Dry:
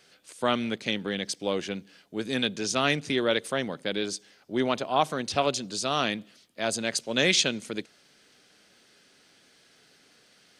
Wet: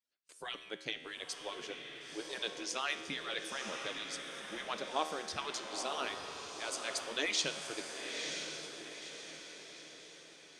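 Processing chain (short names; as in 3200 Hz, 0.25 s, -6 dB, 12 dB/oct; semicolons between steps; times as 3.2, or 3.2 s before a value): median-filter separation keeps percussive; resonator 78 Hz, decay 1.6 s, harmonics all, mix 70%; on a send: diffused feedback echo 0.966 s, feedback 47%, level -5 dB; on the sum: gate with hold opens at -47 dBFS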